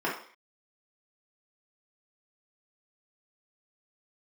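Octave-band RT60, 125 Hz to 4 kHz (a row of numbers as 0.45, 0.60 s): 0.35 s, 0.40 s, 0.45 s, 0.50 s, n/a, 0.55 s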